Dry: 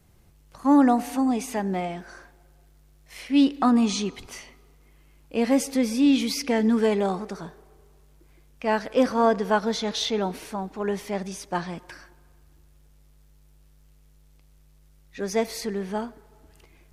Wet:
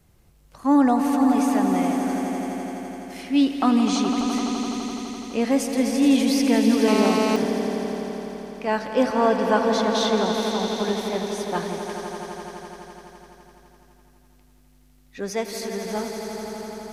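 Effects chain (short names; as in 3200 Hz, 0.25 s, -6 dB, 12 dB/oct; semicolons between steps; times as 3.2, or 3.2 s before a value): 15.3–15.85 low shelf 440 Hz -6 dB; swelling echo 84 ms, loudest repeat 5, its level -10 dB; 6.88–7.36 GSM buzz -24 dBFS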